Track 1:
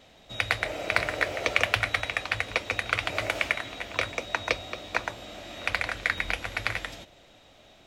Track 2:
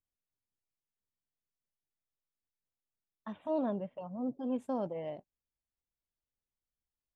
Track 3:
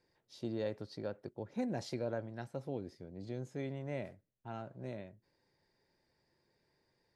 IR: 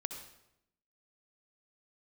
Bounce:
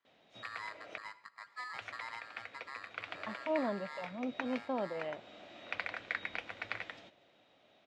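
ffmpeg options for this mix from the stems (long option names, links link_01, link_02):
-filter_complex "[0:a]adelay=50,volume=-11.5dB,asplit=3[link_01][link_02][link_03];[link_01]atrim=end=0.98,asetpts=PTS-STARTPTS,afade=type=out:start_time=0.976:duration=0.004:curve=hsin[link_04];[link_02]atrim=start=0.98:end=1.74,asetpts=PTS-STARTPTS,volume=0[link_05];[link_03]atrim=start=1.74,asetpts=PTS-STARTPTS,afade=type=in:duration=0.004:curve=hsin[link_06];[link_04][link_05][link_06]concat=n=3:v=0:a=1,asplit=2[link_07][link_08];[link_08]volume=-15.5dB[link_09];[1:a]equalizer=frequency=2400:width_type=o:width=2.5:gain=10,volume=-3dB[link_10];[2:a]aeval=exprs='val(0)*sgn(sin(2*PI*1500*n/s))':channel_layout=same,volume=-9.5dB,asplit=3[link_11][link_12][link_13];[link_12]volume=-8.5dB[link_14];[link_13]apad=whole_len=349157[link_15];[link_07][link_15]sidechaincompress=threshold=-56dB:ratio=8:attack=6.9:release=418[link_16];[3:a]atrim=start_sample=2205[link_17];[link_09][link_14]amix=inputs=2:normalize=0[link_18];[link_18][link_17]afir=irnorm=-1:irlink=0[link_19];[link_16][link_10][link_11][link_19]amix=inputs=4:normalize=0,highpass=170,lowpass=3700"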